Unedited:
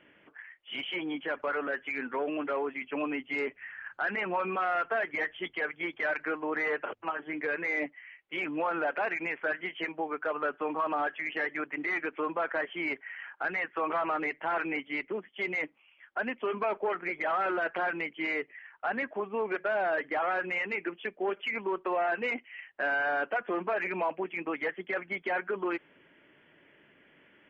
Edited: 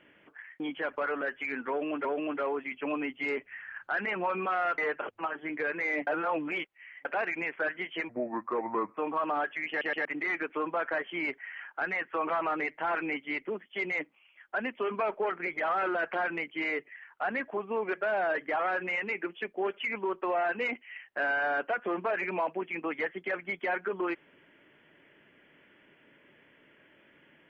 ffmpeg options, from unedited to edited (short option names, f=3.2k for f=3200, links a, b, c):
-filter_complex "[0:a]asplit=11[a][b][c][d][e][f][g][h][i][j][k];[a]atrim=end=0.602[l];[b]atrim=start=1.058:end=2.512[m];[c]atrim=start=2.148:end=4.882[n];[d]atrim=start=6.618:end=7.912[o];[e]atrim=start=7.908:end=8.892,asetpts=PTS-STARTPTS,areverse[p];[f]atrim=start=8.888:end=9.934[q];[g]atrim=start=9.93:end=10.6,asetpts=PTS-STARTPTS,asetrate=33516,aresample=44100[r];[h]atrim=start=10.596:end=11.442[s];[i]atrim=start=11.318:end=11.442[t];[j]atrim=start=11.318:end=11.442[u];[k]atrim=start=11.678[v];[l][m]acrossfade=d=0.004:c1=hsin:c2=hsin[w];[w][n]acrossfade=d=0.004:c1=hsin:c2=hsin[x];[x][o]acrossfade=d=0.004:c1=hsin:c2=hsin[y];[y][p]acrossfade=d=0.004:c1=hsin:c2=hsin[z];[z][q]acrossfade=d=0.004:c1=hsin:c2=hsin[aa];[aa][r]acrossfade=d=0.004:c1=hsin:c2=hsin[ab];[ab][s]acrossfade=d=0.004:c1=hsin:c2=hsin[ac];[ac][t]acrossfade=d=0.004:c1=hsin:c2=hsin[ad];[ad][u]acrossfade=d=0.004:c1=hsin:c2=hsin[ae];[ae][v]acrossfade=d=0.004:c1=hsin:c2=hsin"